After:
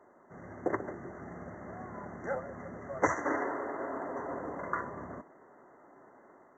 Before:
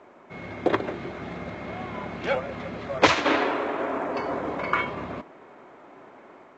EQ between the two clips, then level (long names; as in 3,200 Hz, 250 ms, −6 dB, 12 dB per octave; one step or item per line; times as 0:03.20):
linear-phase brick-wall band-stop 2,100–5,700 Hz
−9.0 dB